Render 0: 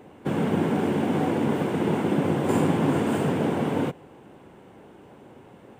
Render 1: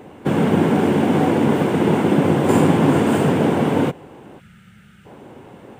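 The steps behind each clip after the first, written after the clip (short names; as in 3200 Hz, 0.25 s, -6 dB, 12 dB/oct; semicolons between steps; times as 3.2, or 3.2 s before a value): spectral gain 4.4–5.06, 230–1200 Hz -23 dB; gain +7.5 dB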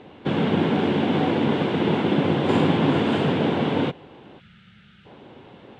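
synth low-pass 3700 Hz, resonance Q 2.8; gain -5 dB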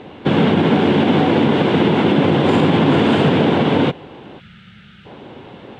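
limiter -13.5 dBFS, peak gain reduction 6 dB; gain +8.5 dB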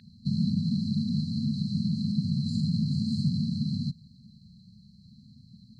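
brick-wall FIR band-stop 240–4000 Hz; band shelf 2500 Hz +15.5 dB; gain -8.5 dB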